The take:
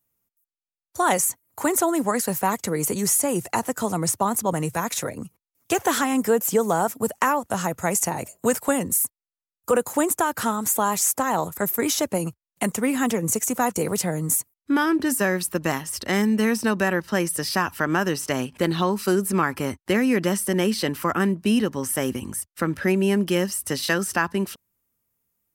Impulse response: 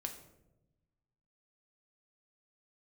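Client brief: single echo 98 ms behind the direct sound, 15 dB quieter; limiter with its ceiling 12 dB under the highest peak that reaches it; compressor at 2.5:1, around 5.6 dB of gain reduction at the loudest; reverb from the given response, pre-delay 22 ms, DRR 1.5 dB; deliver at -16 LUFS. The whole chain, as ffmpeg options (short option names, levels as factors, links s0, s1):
-filter_complex "[0:a]acompressor=threshold=0.0631:ratio=2.5,alimiter=limit=0.0841:level=0:latency=1,aecho=1:1:98:0.178,asplit=2[s0][s1];[1:a]atrim=start_sample=2205,adelay=22[s2];[s1][s2]afir=irnorm=-1:irlink=0,volume=1[s3];[s0][s3]amix=inputs=2:normalize=0,volume=4.22"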